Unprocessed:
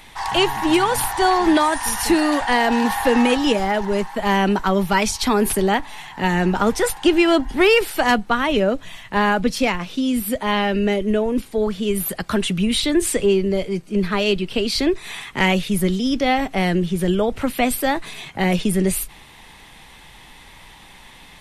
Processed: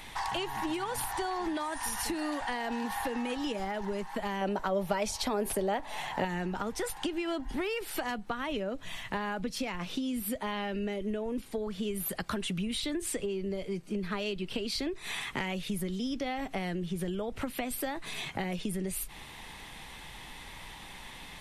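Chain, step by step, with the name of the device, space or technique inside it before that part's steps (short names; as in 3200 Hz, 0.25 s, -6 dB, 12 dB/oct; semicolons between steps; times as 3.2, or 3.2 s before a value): serial compression, leveller first (compressor 2.5:1, threshold -19 dBFS, peak gain reduction 6.5 dB; compressor 5:1, threshold -30 dBFS, peak gain reduction 13 dB); 4.41–6.25 bell 590 Hz +11.5 dB 0.76 oct; gain -2 dB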